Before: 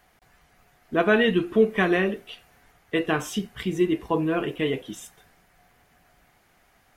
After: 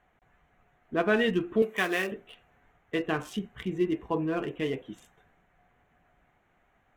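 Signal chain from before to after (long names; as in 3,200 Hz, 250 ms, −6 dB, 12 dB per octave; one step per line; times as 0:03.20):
adaptive Wiener filter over 9 samples
0:01.62–0:02.12: RIAA equalisation recording
level −5 dB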